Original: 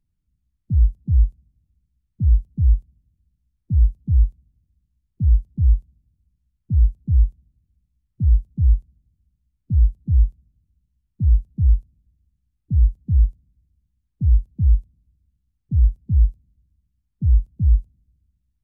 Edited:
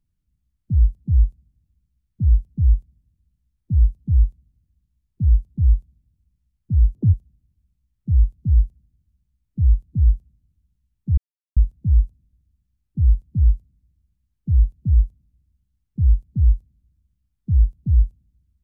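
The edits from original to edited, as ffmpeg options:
ffmpeg -i in.wav -filter_complex "[0:a]asplit=4[link_01][link_02][link_03][link_04];[link_01]atrim=end=6.954[link_05];[link_02]atrim=start=6.95:end=7.26,asetpts=PTS-STARTPTS,asetrate=73647,aresample=44100,atrim=end_sample=8186,asetpts=PTS-STARTPTS[link_06];[link_03]atrim=start=7.256:end=11.3,asetpts=PTS-STARTPTS,afade=type=out:start_time=4.04:duration=0.004:curve=hsin,apad=pad_dur=0.39[link_07];[link_04]atrim=start=11.3,asetpts=PTS-STARTPTS,afade=type=in:duration=0.004:curve=hsin[link_08];[link_05][link_06]acrossfade=duration=0.004:curve1=hsin:curve2=hsin[link_09];[link_07][link_08]concat=n=2:v=0:a=1[link_10];[link_09][link_10]acrossfade=duration=0.004:curve1=hsin:curve2=hsin" out.wav

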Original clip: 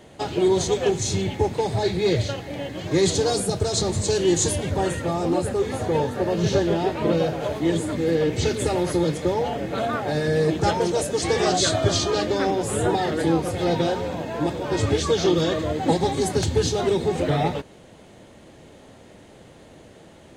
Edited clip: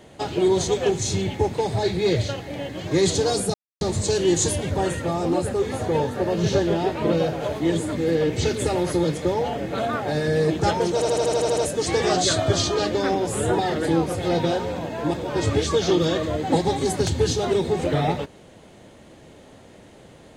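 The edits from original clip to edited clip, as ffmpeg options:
ffmpeg -i in.wav -filter_complex "[0:a]asplit=11[link_01][link_02][link_03][link_04][link_05][link_06][link_07][link_08][link_09][link_10][link_11];[link_01]atrim=end=3.54,asetpts=PTS-STARTPTS,afade=type=out:start_time=3.536:duration=0.004:curve=hsin[link_12];[link_02]atrim=start=3.54:end=3.81,asetpts=PTS-STARTPTS,volume=0[link_13];[link_03]atrim=start=3.81:end=11.022,asetpts=PTS-STARTPTS,afade=type=in:duration=0.004:curve=hsin[link_14];[link_04]atrim=start=10.938:end=11.022[link_15];[link_05]atrim=start=10.938:end=11.022[link_16];[link_06]atrim=start=10.938:end=11.022[link_17];[link_07]atrim=start=10.938:end=11.022[link_18];[link_08]atrim=start=10.938:end=11.022[link_19];[link_09]atrim=start=10.938:end=11.022[link_20];[link_10]atrim=start=10.938:end=11.022[link_21];[link_11]atrim=start=10.938[link_22];[link_12][link_13][link_14]concat=n=3:v=0:a=1[link_23];[link_23][link_15]acrossfade=duration=0.004:curve1=hsin:curve2=hsin[link_24];[link_24][link_16]acrossfade=duration=0.004:curve1=hsin:curve2=hsin[link_25];[link_25][link_17]acrossfade=duration=0.004:curve1=hsin:curve2=hsin[link_26];[link_26][link_18]acrossfade=duration=0.004:curve1=hsin:curve2=hsin[link_27];[link_27][link_19]acrossfade=duration=0.004:curve1=hsin:curve2=hsin[link_28];[link_28][link_20]acrossfade=duration=0.004:curve1=hsin:curve2=hsin[link_29];[link_29][link_21]acrossfade=duration=0.004:curve1=hsin:curve2=hsin[link_30];[link_30][link_22]acrossfade=duration=0.004:curve1=hsin:curve2=hsin" out.wav

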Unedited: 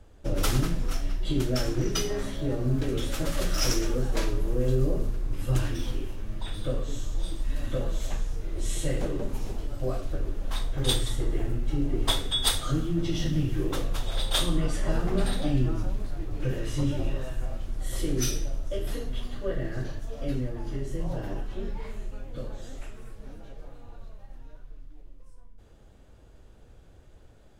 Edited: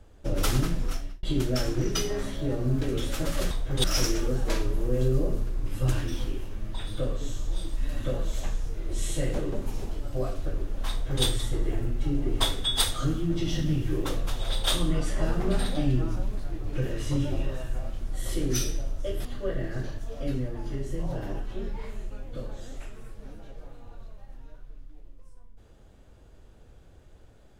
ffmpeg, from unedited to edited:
ffmpeg -i in.wav -filter_complex "[0:a]asplit=5[link_01][link_02][link_03][link_04][link_05];[link_01]atrim=end=1.23,asetpts=PTS-STARTPTS,afade=type=out:start_time=0.87:duration=0.36[link_06];[link_02]atrim=start=1.23:end=3.512,asetpts=PTS-STARTPTS,afade=type=in:duration=0.004:curve=hsin[link_07];[link_03]atrim=start=10.578:end=10.912[link_08];[link_04]atrim=start=3.508:end=18.922[link_09];[link_05]atrim=start=19.258[link_10];[link_06][link_07]concat=n=2:v=0:a=1[link_11];[link_11][link_08]acrossfade=duration=0.004:curve1=hsin:curve2=hsin[link_12];[link_12][link_09]acrossfade=duration=0.004:curve1=hsin:curve2=hsin[link_13];[link_13][link_10]acrossfade=duration=0.004:curve1=hsin:curve2=hsin" out.wav

